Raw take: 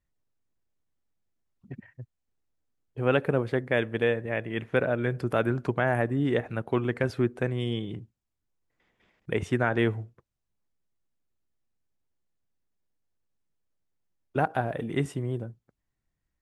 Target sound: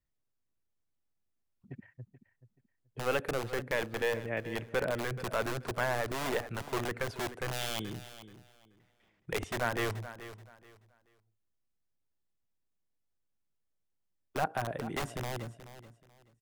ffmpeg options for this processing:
ffmpeg -i in.wav -filter_complex "[0:a]acrossover=split=380|1500[link_01][link_02][link_03];[link_01]aeval=exprs='(mod(18.8*val(0)+1,2)-1)/18.8':channel_layout=same[link_04];[link_04][link_02][link_03]amix=inputs=3:normalize=0,aecho=1:1:430|860|1290:0.2|0.0499|0.0125,asplit=3[link_05][link_06][link_07];[link_05]afade=type=out:start_time=7.52:duration=0.02[link_08];[link_06]adynamicequalizer=threshold=0.00316:dfrequency=2500:dqfactor=0.7:tfrequency=2500:tqfactor=0.7:attack=5:release=100:ratio=0.375:range=3.5:mode=boostabove:tftype=highshelf,afade=type=in:start_time=7.52:duration=0.02,afade=type=out:start_time=9.38:duration=0.02[link_09];[link_07]afade=type=in:start_time=9.38:duration=0.02[link_10];[link_08][link_09][link_10]amix=inputs=3:normalize=0,volume=-5dB" out.wav

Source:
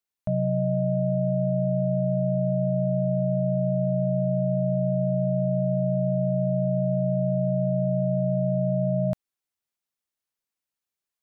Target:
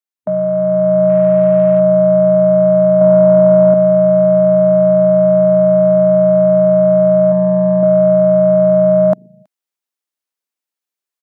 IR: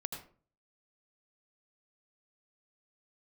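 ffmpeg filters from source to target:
-filter_complex "[0:a]asettb=1/sr,asplit=3[link_01][link_02][link_03];[link_01]atrim=end=7.294[link_04];[link_02]atrim=start=7.29:end=7.83,asetpts=PTS-STARTPTS,afade=type=in:duration=0.004:curve=qsin,afade=type=out:start_time=0.536:duration=0.004:curve=qsin,asplit=2[link_05][link_06];[link_06]adelay=28,volume=-7.5dB[link_07];[link_05][link_07]amix=inputs=2:normalize=0,atrim=end_sample=23814[link_08];[link_03]atrim=start=7.826[link_09];[link_04][link_08]acrossfade=duration=0.004:curve1=hsin:curve2=qsin[link_10];[link_10][link_09]acrossfade=duration=0.004:curve1=qsin:curve2=hsin,aecho=1:1:324:0.0708,afwtdn=0.02,dynaudnorm=framelen=520:gausssize=3:maxgain=6.5dB,asettb=1/sr,asplit=3[link_11][link_12][link_13];[link_11]atrim=end=1.094[link_14];[link_12]atrim=start=1.09:end=1.8,asetpts=PTS-STARTPTS,afade=type=in:duration=0.004:curve=qsin,afade=type=out:start_time=0.706:duration=0.004:curve=qsin,aeval=exprs='0.335*(cos(1*acos(clip(val(0)/0.335,-1,1)))-cos(1*PI/2))+0.00299*(cos(8*acos(clip(val(0)/0.335,-1,1)))-cos(8*PI/2))':channel_layout=same[link_15];[link_13]atrim=start=1.796[link_16];[link_14][link_15]acrossfade=duration=0.004:curve1=hsin:curve2=qsin[link_17];[link_17][link_16]acrossfade=duration=0.004:curve1=qsin:curve2=hsin,asettb=1/sr,asplit=3[link_18][link_19][link_20];[link_18]atrim=end=3.014[link_21];[link_19]atrim=start=3.01:end=3.74,asetpts=PTS-STARTPTS,afade=type=in:duration=0.004:curve=qsin,afade=type=out:start_time=0.726:duration=0.004:curve=qsin,acontrast=27[link_22];[link_20]atrim=start=3.736[link_23];[link_21][link_22]acrossfade=duration=0.004:curve1=hsin:curve2=qsin[link_24];[link_24][link_23]acrossfade=duration=0.004:curve1=qsin:curve2=hsin,highpass=frequency=230:width=0.5412,highpass=frequency=230:width=1.3066,alimiter=level_in=13dB:limit=-1dB:release=50:level=0:latency=1,volume=-1dB"

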